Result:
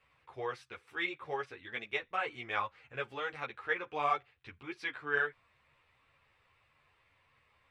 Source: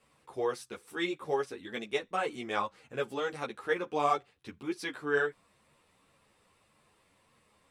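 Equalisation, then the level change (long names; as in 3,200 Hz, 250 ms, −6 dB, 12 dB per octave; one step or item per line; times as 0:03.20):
drawn EQ curve 120 Hz 0 dB, 190 Hz −14 dB, 2,300 Hz +3 dB, 9,600 Hz −20 dB
0.0 dB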